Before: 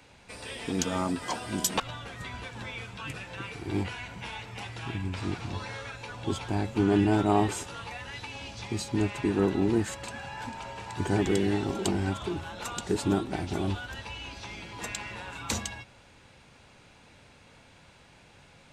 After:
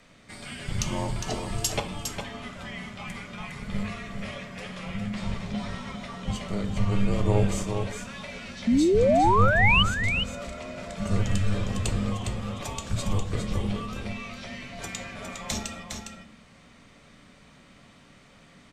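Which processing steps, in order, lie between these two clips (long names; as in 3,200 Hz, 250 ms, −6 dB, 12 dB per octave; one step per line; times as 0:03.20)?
rectangular room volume 77 cubic metres, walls mixed, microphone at 0.34 metres
frequency shifter −300 Hz
sound drawn into the spectrogram rise, 0:08.67–0:09.83, 220–3,100 Hz −20 dBFS
on a send: single-tap delay 408 ms −6.5 dB
on the sum: dynamic equaliser 1,500 Hz, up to −5 dB, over −44 dBFS, Q 2.3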